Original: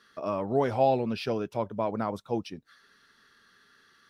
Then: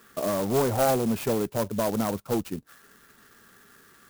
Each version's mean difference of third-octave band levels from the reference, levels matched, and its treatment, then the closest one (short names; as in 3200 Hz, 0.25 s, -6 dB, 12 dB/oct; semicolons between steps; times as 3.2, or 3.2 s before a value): 10.0 dB: tilt shelf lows +3.5 dB; in parallel at +3 dB: compressor, threshold -35 dBFS, peak gain reduction 17 dB; on the sum: one-sided clip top -21 dBFS; clock jitter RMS 0.069 ms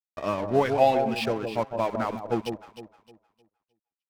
7.0 dB: reverb removal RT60 1.5 s; bell 2500 Hz +6.5 dB 1 oct; crossover distortion -42.5 dBFS; on a send: echo with dull and thin repeats by turns 0.154 s, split 880 Hz, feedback 53%, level -5.5 dB; on the sum: gain +4.5 dB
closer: second